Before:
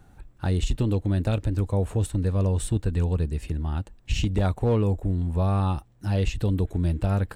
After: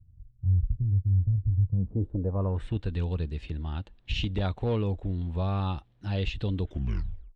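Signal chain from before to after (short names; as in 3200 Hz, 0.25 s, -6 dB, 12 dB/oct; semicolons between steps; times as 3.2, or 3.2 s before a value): tape stop at the end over 0.71 s; low-pass sweep 100 Hz -> 3600 Hz, 1.62–2.83; gain -5.5 dB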